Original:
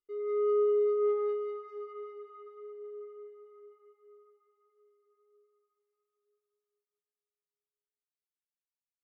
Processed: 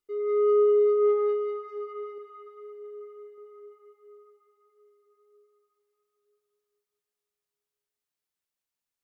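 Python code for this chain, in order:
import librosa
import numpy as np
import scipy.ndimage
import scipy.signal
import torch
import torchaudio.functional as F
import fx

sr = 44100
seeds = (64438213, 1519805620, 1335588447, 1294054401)

y = fx.peak_eq(x, sr, hz=450.0, db=-4.0, octaves=2.6, at=(2.18, 3.38))
y = F.gain(torch.from_numpy(y), 6.0).numpy()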